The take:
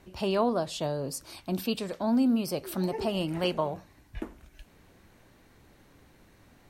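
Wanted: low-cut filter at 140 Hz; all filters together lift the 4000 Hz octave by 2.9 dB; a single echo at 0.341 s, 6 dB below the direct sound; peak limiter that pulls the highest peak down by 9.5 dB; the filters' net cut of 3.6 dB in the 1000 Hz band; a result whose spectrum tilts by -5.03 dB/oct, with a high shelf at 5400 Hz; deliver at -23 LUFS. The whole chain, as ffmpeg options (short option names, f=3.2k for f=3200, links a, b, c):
-af "highpass=140,equalizer=f=1k:t=o:g=-5,equalizer=f=4k:t=o:g=6.5,highshelf=f=5.4k:g=-5,alimiter=level_in=0.5dB:limit=-24dB:level=0:latency=1,volume=-0.5dB,aecho=1:1:341:0.501,volume=10.5dB"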